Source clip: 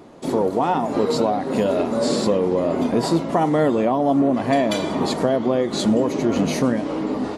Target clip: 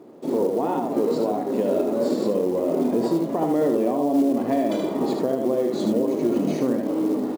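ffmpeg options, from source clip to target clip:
ffmpeg -i in.wav -af "crystalizer=i=5:c=0,bandpass=frequency=360:width_type=q:width=1.3:csg=0,aecho=1:1:25|76:0.178|0.596,alimiter=limit=-12.5dB:level=0:latency=1:release=118,acrusher=bits=7:mode=log:mix=0:aa=0.000001" out.wav

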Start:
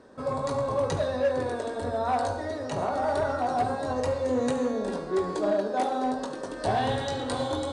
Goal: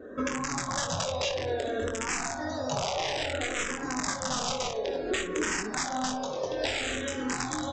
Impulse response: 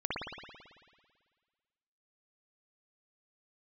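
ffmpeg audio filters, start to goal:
-filter_complex "[0:a]aresample=16000,aeval=exprs='(mod(11.2*val(0)+1,2)-1)/11.2':channel_layout=same,aresample=44100,highshelf=frequency=4200:gain=9.5,aecho=1:1:23|58:0.501|0.211,acontrast=51,bandreject=frequency=4300:width=9,acompressor=threshold=-29dB:ratio=12,asplit=2[link_01][link_02];[1:a]atrim=start_sample=2205,adelay=7[link_03];[link_02][link_03]afir=irnorm=-1:irlink=0,volume=-19dB[link_04];[link_01][link_04]amix=inputs=2:normalize=0,afftdn=noise_reduction=19:noise_floor=-52,asplit=2[link_05][link_06];[link_06]afreqshift=-0.58[link_07];[link_05][link_07]amix=inputs=2:normalize=1,volume=4dB"

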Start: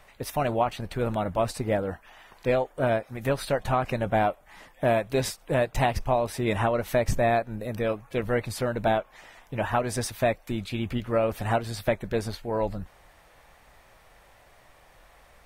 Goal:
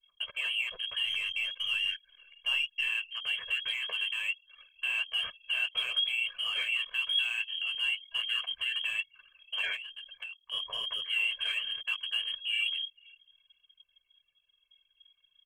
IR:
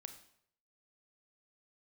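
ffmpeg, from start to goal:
-filter_complex "[0:a]lowpass=frequency=2800:width_type=q:width=0.5098,lowpass=frequency=2800:width_type=q:width=0.6013,lowpass=frequency=2800:width_type=q:width=0.9,lowpass=frequency=2800:width_type=q:width=2.563,afreqshift=-3300,asplit=2[link_01][link_02];[link_02]asoftclip=type=hard:threshold=-26.5dB,volume=-8dB[link_03];[link_01][link_03]amix=inputs=2:normalize=0,alimiter=limit=-20.5dB:level=0:latency=1:release=18,asettb=1/sr,asplit=3[link_04][link_05][link_06];[link_04]atrim=end=1.064[link_07];[link_05]atrim=start=1.06:end=2.88,asetpts=PTS-STARTPTS,afade=type=in:duration=0.004:curve=qsin,afade=type=out:start_time=1.816:duration=0.004:curve=qsin,aeval=exprs='0.0944*(cos(1*acos(clip(val(0)/0.0944,-1,1)))-cos(1*PI/2))+0.00133*(cos(4*acos(clip(val(0)/0.0944,-1,1)))-cos(4*PI/2))':channel_layout=same[link_08];[link_06]atrim=start=2.876[link_09];[link_07][link_08]acrossfade=duration=0.004:curve1=hsin:curve2=qsin[link_10];[link_10][link_09]acrossfade=duration=0.004:curve1=qsin:curve2=hsin,asplit=3[link_11][link_12][link_13];[link_11]afade=type=out:start_time=9.75:duration=0.02[link_14];[link_12]acompressor=threshold=-36dB:ratio=12,afade=type=in:start_time=9.75:duration=0.02,afade=type=out:start_time=10.51:duration=0.02[link_15];[link_13]afade=type=in:start_time=10.51:duration=0.02[link_16];[link_14][link_15][link_16]amix=inputs=3:normalize=0,adynamicequalizer=threshold=0.00251:dfrequency=710:dqfactor=1:tfrequency=710:tqfactor=1:attack=5:release=100:ratio=0.375:range=3.5:mode=cutabove:tftype=bell,aecho=1:1:1.8:0.8,aecho=1:1:495|990|1485:0.0841|0.0303|0.0109,flanger=delay=8.7:depth=5.2:regen=-39:speed=1.1:shape=triangular,anlmdn=0.158,volume=-1dB"

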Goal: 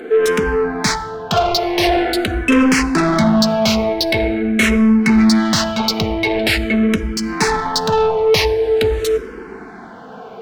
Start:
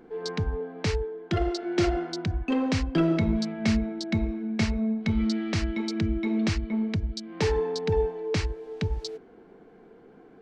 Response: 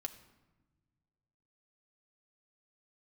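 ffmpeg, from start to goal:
-filter_complex "[0:a]asplit=2[link_01][link_02];[link_02]highpass=frequency=720:poles=1,volume=25dB,asoftclip=type=tanh:threshold=-13dB[link_03];[link_01][link_03]amix=inputs=2:normalize=0,lowpass=frequency=6000:poles=1,volume=-6dB,asplit=2[link_04][link_05];[1:a]atrim=start_sample=2205,asetrate=35721,aresample=44100,highshelf=frequency=6600:gain=5.5[link_06];[link_05][link_06]afir=irnorm=-1:irlink=0,volume=-1.5dB[link_07];[link_04][link_07]amix=inputs=2:normalize=0,asplit=2[link_08][link_09];[link_09]afreqshift=-0.45[link_10];[link_08][link_10]amix=inputs=2:normalize=1,volume=4.5dB"

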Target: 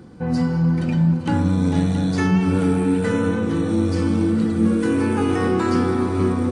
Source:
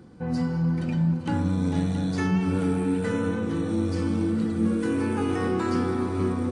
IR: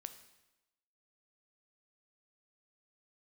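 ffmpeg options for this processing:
-af "volume=6dB"

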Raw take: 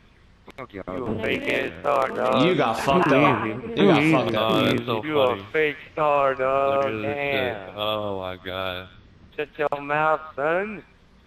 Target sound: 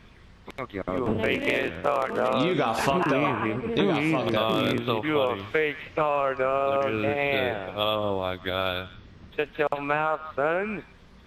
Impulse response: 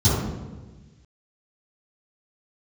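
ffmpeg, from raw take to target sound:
-af "acompressor=threshold=-22dB:ratio=10,volume=2.5dB"

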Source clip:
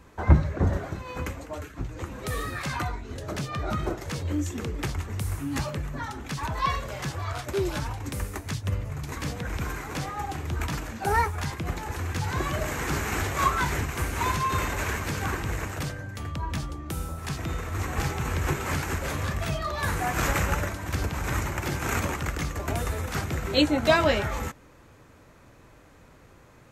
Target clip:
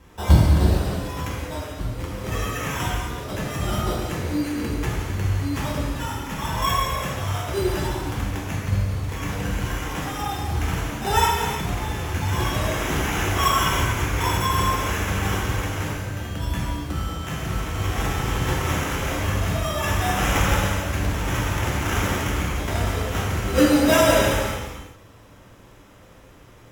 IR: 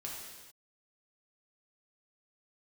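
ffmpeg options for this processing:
-filter_complex "[0:a]asettb=1/sr,asplit=3[link_01][link_02][link_03];[link_01]atrim=end=14.264[link_04];[link_02]atrim=start=14.26:end=14.96,asetpts=PTS-STARTPTS,afade=type=in:duration=0.004:curve=qsin,afade=type=out:start_time=0.696:duration=0.004:curve=qsin,lowpass=2800[link_05];[link_03]atrim=start=14.956[link_06];[link_04][link_05]acrossfade=duration=0.004:curve1=hsin:curve2=qsin[link_07];[link_07][link_06]acrossfade=duration=0.004:curve1=qsin:curve2=hsin,acrusher=samples=10:mix=1:aa=0.000001[link_08];[1:a]atrim=start_sample=2205,afade=type=out:start_time=0.4:duration=0.01,atrim=end_sample=18081,asetrate=33957,aresample=44100[link_09];[link_08][link_09]afir=irnorm=-1:irlink=0,volume=3.5dB"

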